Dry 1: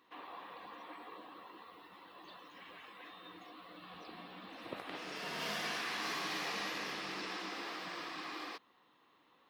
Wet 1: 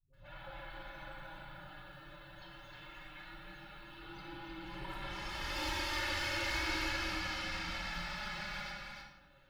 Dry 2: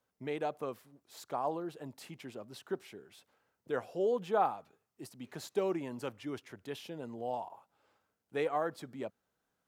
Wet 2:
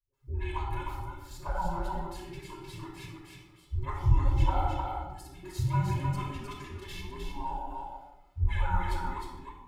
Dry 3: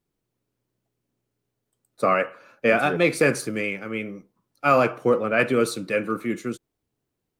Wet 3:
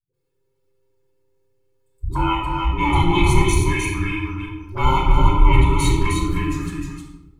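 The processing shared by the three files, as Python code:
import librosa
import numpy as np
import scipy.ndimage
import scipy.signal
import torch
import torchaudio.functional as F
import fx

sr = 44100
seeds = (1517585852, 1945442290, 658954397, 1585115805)

p1 = fx.band_invert(x, sr, width_hz=500)
p2 = p1 + 0.78 * np.pad(p1, (int(2.3 * sr / 1000.0), 0))[:len(p1)]
p3 = fx.transient(p2, sr, attack_db=-3, sustain_db=4)
p4 = fx.dispersion(p3, sr, late='highs', ms=135.0, hz=320.0)
p5 = fx.env_flanger(p4, sr, rest_ms=7.5, full_db=-22.0)
p6 = p5 + fx.echo_single(p5, sr, ms=308, db=-4.5, dry=0)
p7 = fx.room_shoebox(p6, sr, seeds[0], volume_m3=3400.0, walls='furnished', distance_m=5.3)
y = p7 * 10.0 ** (-1.5 / 20.0)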